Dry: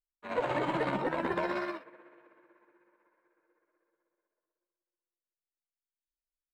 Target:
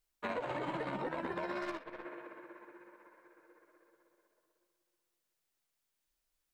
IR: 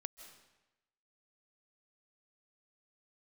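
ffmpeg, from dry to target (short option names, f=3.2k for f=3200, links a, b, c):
-filter_complex "[0:a]alimiter=level_in=3.5dB:limit=-24dB:level=0:latency=1:release=300,volume=-3.5dB,acompressor=threshold=-47dB:ratio=6,asettb=1/sr,asplit=3[a][b][c];[a]atrim=end=1.624[d];[b]atrim=start=1.62:end=2.05,asetpts=PTS-STARTPTS,afade=t=in:d=0.004:c=qsin,afade=t=out:st=0.426:d=0.004:c=qsin,aeval=exprs='0.0112*(cos(1*acos(clip(val(0)/0.0112,-1,1)))-cos(1*PI/2))+0.000891*(cos(3*acos(clip(val(0)/0.0112,-1,1)))-cos(3*PI/2))+0.001*(cos(5*acos(clip(val(0)/0.0112,-1,1)))-cos(5*PI/2))+0.00112*(cos(7*acos(clip(val(0)/0.0112,-1,1)))-cos(7*PI/2))+0.000447*(cos(8*acos(clip(val(0)/0.0112,-1,1)))-cos(8*PI/2))':c=same[e];[c]atrim=start=2.046[f];[d][e]acrossfade=d=0.004:c1=hsin:c2=qsin[g];[g][f]acrossfade=d=0.004:c1=qsin:c2=hsin,volume=11dB"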